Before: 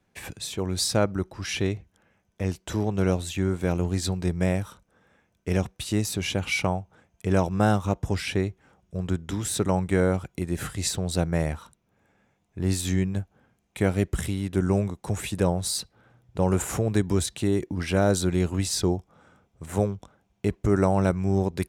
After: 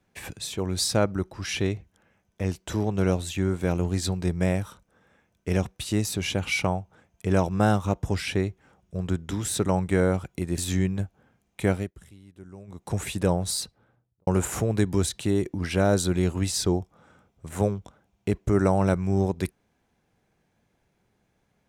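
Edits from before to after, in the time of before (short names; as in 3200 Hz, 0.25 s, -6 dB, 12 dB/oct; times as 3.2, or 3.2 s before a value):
10.58–12.75 cut
13.88–15.04 dip -21.5 dB, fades 0.20 s
15.69–16.44 studio fade out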